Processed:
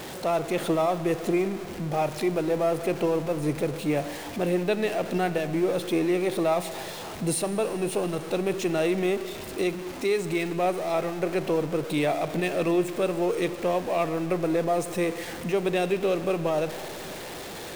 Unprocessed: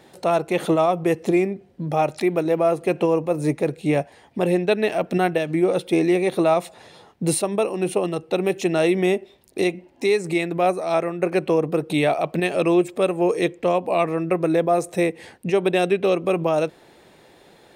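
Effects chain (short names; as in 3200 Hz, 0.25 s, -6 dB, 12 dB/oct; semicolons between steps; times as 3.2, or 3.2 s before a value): zero-crossing step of -26 dBFS; Schroeder reverb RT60 3.4 s, combs from 30 ms, DRR 12 dB; gain -7 dB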